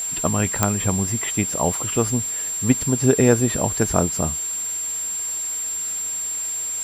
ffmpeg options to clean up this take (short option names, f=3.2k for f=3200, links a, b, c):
-af "adeclick=t=4,bandreject=f=7.4k:w=30,afwtdn=0.011"